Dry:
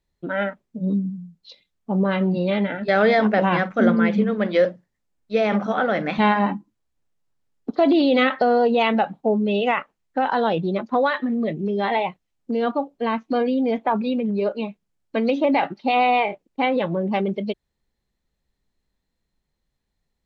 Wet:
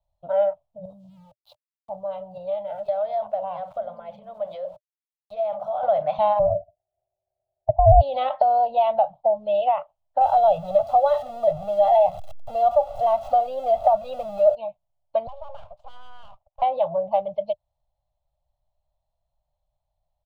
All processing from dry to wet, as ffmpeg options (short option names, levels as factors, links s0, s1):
-filter_complex "[0:a]asettb=1/sr,asplit=3[s0][s1][s2];[s0]atrim=end=0.854[s3];[s1]atrim=start=0.85:end=5.83,asetpts=PTS-STARTPTS,afade=t=in:d=0.004:c=qsin,afade=t=out:st=4.976:d=0.004:c=qsin,aeval=exprs='val(0)*gte(abs(val(0)),0.00631)':c=same,acompressor=threshold=0.0398:ratio=5:attack=3.2:release=140:knee=1:detection=peak[s4];[s2]atrim=start=5.826[s5];[s3][s4]acrossfade=d=0.004:c1=hsin:c2=qsin[s6];[s6][s5]acrossfade=d=0.004:c1=qsin:c2=hsin,asettb=1/sr,asplit=3[s7][s8][s9];[s7]atrim=end=6.394[s10];[s8]atrim=start=6.39:end=8.01,asetpts=PTS-STARTPTS,afade=t=in:d=0.004:c=qsin,afade=t=out:st=1.616:d=0.004:c=qsin,lowpass=f=320:t=q:w=2.6,aeval=exprs='val(0)*sin(2*PI*380*n/s)':c=same[s11];[s9]atrim=start=8.006[s12];[s10][s11]acrossfade=d=0.004:c1=hsin:c2=qsin[s13];[s13][s12]acrossfade=d=0.004:c1=qsin:c2=hsin,asettb=1/sr,asplit=3[s14][s15][s16];[s14]atrim=end=10.214[s17];[s15]atrim=start=10.21:end=14.55,asetpts=PTS-STARTPTS,afade=t=in:d=0.004:c=qsin,afade=t=out:st=4.336:d=0.004:c=qsin,aeval=exprs='val(0)+0.5*0.0335*sgn(val(0))':c=same,aecho=1:1:1.5:0.85,atrim=end_sample=191394[s18];[s16]atrim=start=14.546[s19];[s17][s18]acrossfade=d=0.004:c1=hsin:c2=qsin[s20];[s20][s19]acrossfade=d=0.004:c1=qsin:c2=hsin,asettb=1/sr,asplit=3[s21][s22][s23];[s21]atrim=end=15.274[s24];[s22]atrim=start=15.27:end=16.62,asetpts=PTS-STARTPTS,afade=t=in:d=0.004:c=qsin,afade=t=out:st=1.346:d=0.004:c=qsin,acompressor=threshold=0.0126:ratio=3:attack=3.2:release=140:knee=1:detection=peak,highpass=210,lowpass=2800,aeval=exprs='abs(val(0))':c=same[s25];[s23]atrim=start=16.616[s26];[s24][s25]acrossfade=d=0.004:c1=hsin:c2=qsin[s27];[s27][s26]acrossfade=d=0.004:c1=qsin:c2=hsin,firequalizer=gain_entry='entry(120,0);entry(220,-26);entry(400,-30);entry(600,12);entry(1700,-23);entry(3100,-8);entry(5400,-16)':delay=0.05:min_phase=1,acrossover=split=190[s28][s29];[s29]acompressor=threshold=0.112:ratio=2[s30];[s28][s30]amix=inputs=2:normalize=0"